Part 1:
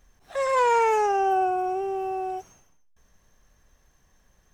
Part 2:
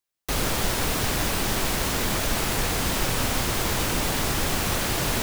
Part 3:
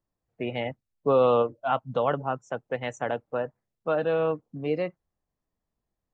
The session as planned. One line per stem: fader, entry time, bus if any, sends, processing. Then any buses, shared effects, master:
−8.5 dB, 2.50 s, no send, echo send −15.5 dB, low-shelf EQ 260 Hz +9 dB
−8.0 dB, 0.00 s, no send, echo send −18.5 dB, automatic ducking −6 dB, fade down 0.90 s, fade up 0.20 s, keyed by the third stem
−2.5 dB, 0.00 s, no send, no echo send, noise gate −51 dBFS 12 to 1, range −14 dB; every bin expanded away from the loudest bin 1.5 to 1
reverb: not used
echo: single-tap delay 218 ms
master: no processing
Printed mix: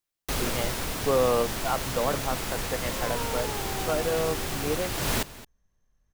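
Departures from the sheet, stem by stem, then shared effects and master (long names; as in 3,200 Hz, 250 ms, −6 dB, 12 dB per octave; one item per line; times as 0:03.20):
stem 1 −8.5 dB → −17.0 dB
stem 2 −8.0 dB → −1.0 dB
stem 3: missing every bin expanded away from the loudest bin 1.5 to 1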